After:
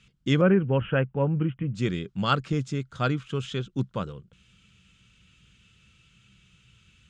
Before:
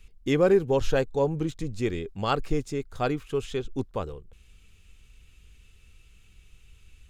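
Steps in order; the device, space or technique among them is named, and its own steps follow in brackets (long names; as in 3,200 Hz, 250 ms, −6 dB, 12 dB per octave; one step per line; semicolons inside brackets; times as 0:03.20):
0:00.41–0:01.75: Butterworth low-pass 3,000 Hz 96 dB per octave
car door speaker (loudspeaker in its box 100–7,900 Hz, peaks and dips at 130 Hz +9 dB, 190 Hz +10 dB, 420 Hz −6 dB, 770 Hz −6 dB, 1,400 Hz +7 dB, 3,200 Hz +6 dB)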